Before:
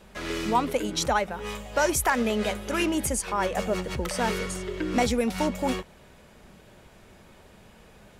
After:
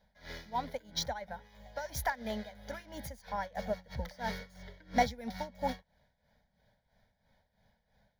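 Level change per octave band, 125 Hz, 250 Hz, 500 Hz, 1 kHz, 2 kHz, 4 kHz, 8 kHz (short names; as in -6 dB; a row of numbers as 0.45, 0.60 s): -10.0, -14.5, -12.0, -8.5, -11.5, -9.5, -16.0 dB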